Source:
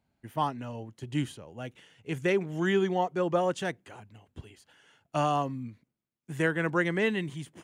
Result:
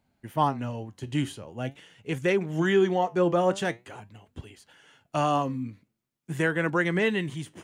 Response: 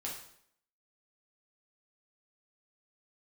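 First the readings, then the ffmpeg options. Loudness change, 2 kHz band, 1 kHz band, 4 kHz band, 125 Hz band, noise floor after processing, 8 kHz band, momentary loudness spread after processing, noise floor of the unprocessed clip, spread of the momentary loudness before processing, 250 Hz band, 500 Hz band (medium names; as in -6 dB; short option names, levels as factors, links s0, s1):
+3.0 dB, +2.5 dB, +3.0 dB, +3.0 dB, +3.5 dB, -79 dBFS, +3.5 dB, 19 LU, -83 dBFS, 17 LU, +3.5 dB, +3.5 dB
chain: -filter_complex "[0:a]asplit=2[s0][s1];[s1]alimiter=limit=0.0794:level=0:latency=1:release=107,volume=0.944[s2];[s0][s2]amix=inputs=2:normalize=0,flanger=delay=3.3:depth=8.7:regen=77:speed=0.45:shape=triangular,volume=1.41"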